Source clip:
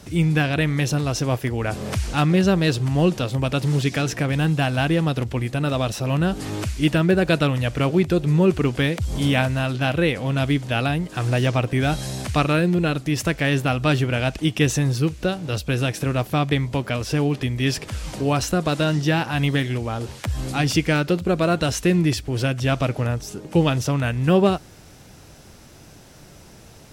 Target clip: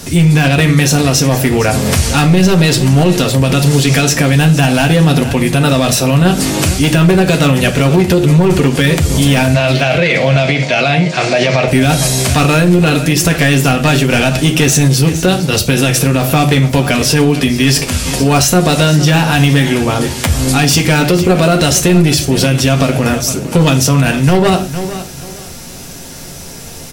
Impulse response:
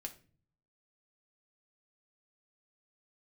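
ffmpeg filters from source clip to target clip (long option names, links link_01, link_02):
-filter_complex "[0:a]highshelf=frequency=4600:gain=10.5,volume=15dB,asoftclip=hard,volume=-15dB,asettb=1/sr,asplit=3[link_01][link_02][link_03];[link_01]atrim=end=9.544[link_04];[link_02]atrim=start=9.54:end=11.68,asetpts=PTS-STARTPTS,afade=type=in:duration=0.004:curve=qsin,afade=type=out:start_time=2.136:duration=0.004:curve=qsin,highpass=frequency=120:width=0.5412,highpass=frequency=120:width=1.3066,equalizer=frequency=270:width_type=q:width=4:gain=-8,equalizer=frequency=620:width_type=q:width=4:gain=9,equalizer=frequency=2200:width_type=q:width=4:gain=10,equalizer=frequency=4300:width_type=q:width=4:gain=4,lowpass=frequency=6600:width=0.5412,lowpass=frequency=6600:width=1.3066[link_05];[link_03]atrim=start=11.676[link_06];[link_04][link_05]acrossfade=duration=0.004:curve1=hsin:curve2=qsin[link_07];[link_07][link_06]acrossfade=duration=0.004:curve1=qsin:curve2=hsin,aecho=1:1:459|918|1377:0.158|0.0444|0.0124[link_08];[1:a]atrim=start_sample=2205,atrim=end_sample=6615[link_09];[link_08][link_09]afir=irnorm=-1:irlink=0,alimiter=level_in=18dB:limit=-1dB:release=50:level=0:latency=1,volume=-1dB"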